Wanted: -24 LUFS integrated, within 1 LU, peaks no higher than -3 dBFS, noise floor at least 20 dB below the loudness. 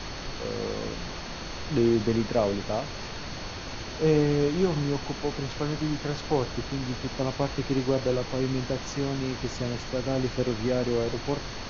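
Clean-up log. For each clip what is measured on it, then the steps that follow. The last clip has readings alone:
steady tone 4.4 kHz; tone level -46 dBFS; noise floor -37 dBFS; noise floor target -49 dBFS; loudness -28.5 LUFS; peak level -11.5 dBFS; loudness target -24.0 LUFS
-> band-stop 4.4 kHz, Q 30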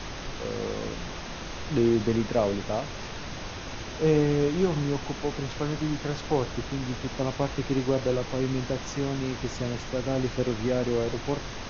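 steady tone not found; noise floor -38 dBFS; noise floor target -49 dBFS
-> noise print and reduce 11 dB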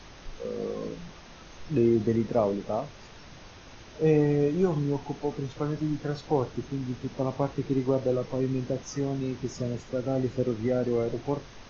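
noise floor -48 dBFS; noise floor target -49 dBFS
-> noise print and reduce 6 dB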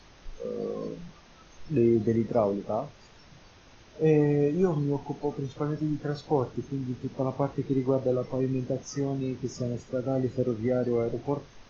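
noise floor -54 dBFS; loudness -29.0 LUFS; peak level -11.5 dBFS; loudness target -24.0 LUFS
-> trim +5 dB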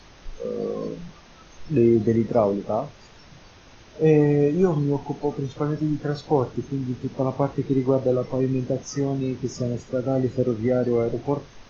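loudness -24.0 LUFS; peak level -6.5 dBFS; noise floor -49 dBFS

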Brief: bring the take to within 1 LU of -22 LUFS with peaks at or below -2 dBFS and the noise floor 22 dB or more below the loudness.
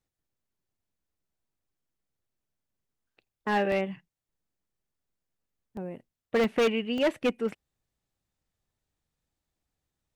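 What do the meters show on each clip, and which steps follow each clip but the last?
clipped samples 0.9%; clipping level -20.0 dBFS; dropouts 5; longest dropout 1.4 ms; loudness -28.5 LUFS; peak level -20.0 dBFS; loudness target -22.0 LUFS
-> clip repair -20 dBFS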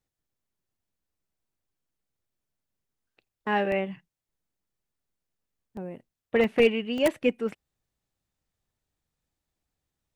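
clipped samples 0.0%; dropouts 5; longest dropout 1.4 ms
-> interpolate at 3.72/5.77/6.44/6.98/7.49 s, 1.4 ms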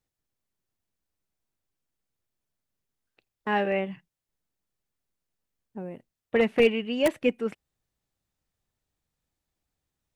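dropouts 0; loudness -26.0 LUFS; peak level -11.0 dBFS; loudness target -22.0 LUFS
-> trim +4 dB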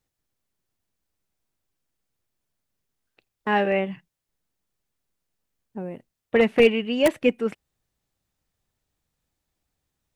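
loudness -22.5 LUFS; peak level -7.0 dBFS; noise floor -84 dBFS

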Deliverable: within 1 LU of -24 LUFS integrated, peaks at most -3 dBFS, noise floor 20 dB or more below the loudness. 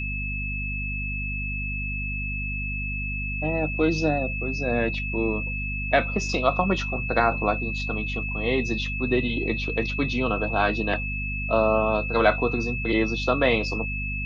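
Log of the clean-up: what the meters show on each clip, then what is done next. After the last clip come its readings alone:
hum 50 Hz; highest harmonic 250 Hz; hum level -29 dBFS; steady tone 2.6 kHz; tone level -30 dBFS; loudness -25.0 LUFS; peak level -6.0 dBFS; loudness target -24.0 LUFS
-> de-hum 50 Hz, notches 5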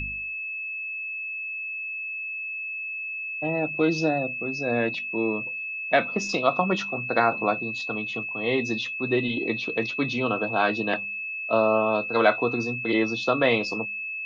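hum not found; steady tone 2.6 kHz; tone level -30 dBFS
-> band-stop 2.6 kHz, Q 30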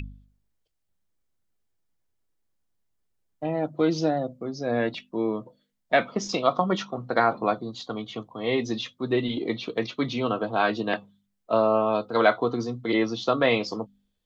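steady tone not found; loudness -26.5 LUFS; peak level -6.0 dBFS; loudness target -24.0 LUFS
-> trim +2.5 dB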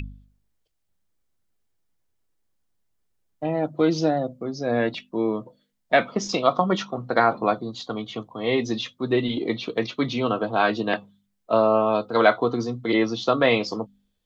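loudness -24.0 LUFS; peak level -3.5 dBFS; noise floor -74 dBFS

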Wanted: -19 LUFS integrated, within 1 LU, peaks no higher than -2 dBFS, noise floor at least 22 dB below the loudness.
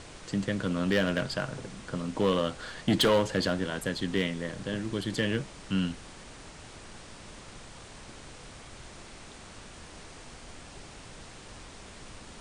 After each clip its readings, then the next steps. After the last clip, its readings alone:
clipped samples 0.4%; clipping level -18.0 dBFS; noise floor -48 dBFS; noise floor target -52 dBFS; loudness -30.0 LUFS; peak level -18.0 dBFS; loudness target -19.0 LUFS
-> clip repair -18 dBFS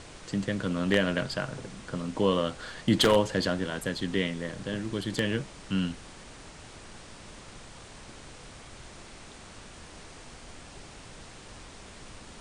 clipped samples 0.0%; noise floor -48 dBFS; noise floor target -51 dBFS
-> noise print and reduce 6 dB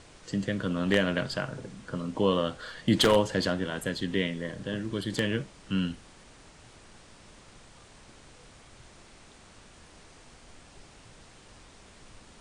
noise floor -54 dBFS; loudness -29.0 LUFS; peak level -9.0 dBFS; loudness target -19.0 LUFS
-> trim +10 dB; peak limiter -2 dBFS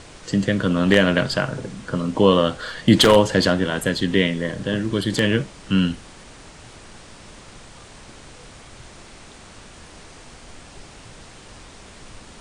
loudness -19.5 LUFS; peak level -2.0 dBFS; noise floor -44 dBFS

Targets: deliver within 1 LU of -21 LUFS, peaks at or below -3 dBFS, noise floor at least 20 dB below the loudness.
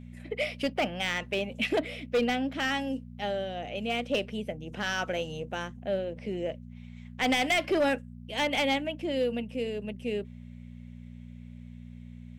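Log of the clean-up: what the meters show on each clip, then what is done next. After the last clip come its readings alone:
clipped samples 0.6%; clipping level -20.5 dBFS; hum 60 Hz; highest harmonic 240 Hz; hum level -42 dBFS; loudness -30.5 LUFS; peak level -20.5 dBFS; loudness target -21.0 LUFS
-> clip repair -20.5 dBFS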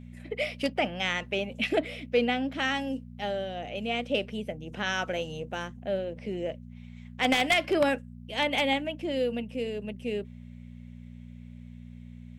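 clipped samples 0.0%; hum 60 Hz; highest harmonic 240 Hz; hum level -42 dBFS
-> de-hum 60 Hz, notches 4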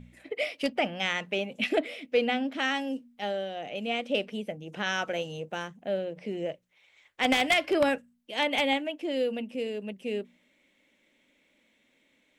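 hum not found; loudness -30.0 LUFS; peak level -11.0 dBFS; loudness target -21.0 LUFS
-> trim +9 dB; peak limiter -3 dBFS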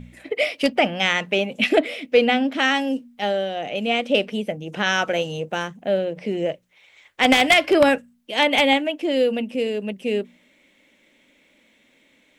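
loudness -21.0 LUFS; peak level -3.0 dBFS; noise floor -60 dBFS

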